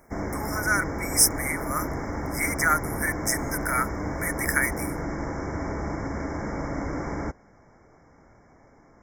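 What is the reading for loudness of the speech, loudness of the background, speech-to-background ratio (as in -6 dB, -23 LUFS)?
-25.5 LUFS, -31.5 LUFS, 6.0 dB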